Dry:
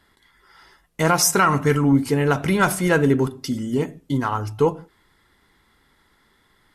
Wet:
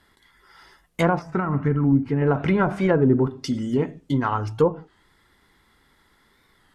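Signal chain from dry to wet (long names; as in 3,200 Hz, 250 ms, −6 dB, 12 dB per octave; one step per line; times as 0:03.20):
treble cut that deepens with the level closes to 820 Hz, closed at −13 dBFS
0:01.20–0:02.22: octave-band graphic EQ 500/1,000/4,000/8,000 Hz −7/−5/−4/−8 dB
wow of a warped record 33 1/3 rpm, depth 100 cents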